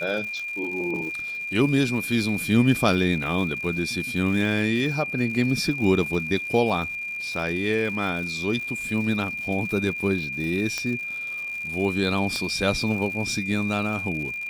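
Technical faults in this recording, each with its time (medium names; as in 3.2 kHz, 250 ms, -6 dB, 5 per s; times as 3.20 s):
crackle 150 per s -33 dBFS
whine 2.4 kHz -29 dBFS
10.78 s: pop -13 dBFS
12.36 s: pop -16 dBFS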